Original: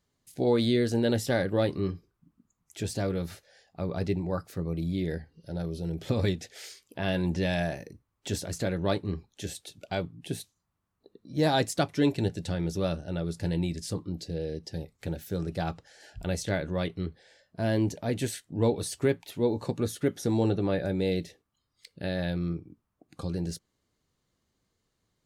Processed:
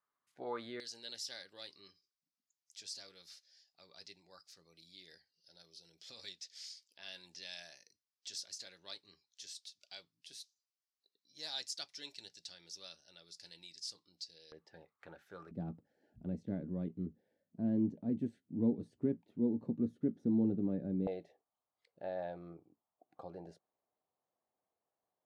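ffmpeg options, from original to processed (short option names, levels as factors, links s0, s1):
-af "asetnsamples=n=441:p=0,asendcmd='0.8 bandpass f 5000;14.52 bandpass f 1200;15.51 bandpass f 230;21.07 bandpass f 730',bandpass=f=1200:t=q:w=3.3:csg=0"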